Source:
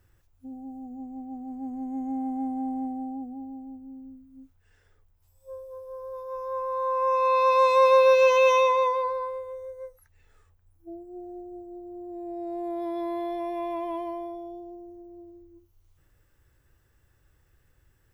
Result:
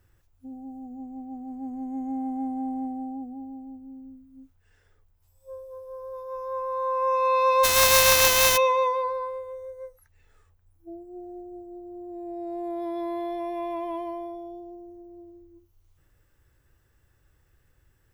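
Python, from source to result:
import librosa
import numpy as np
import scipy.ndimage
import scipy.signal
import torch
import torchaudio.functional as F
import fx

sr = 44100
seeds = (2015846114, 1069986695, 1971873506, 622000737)

y = fx.spec_flatten(x, sr, power=0.31, at=(7.63, 8.56), fade=0.02)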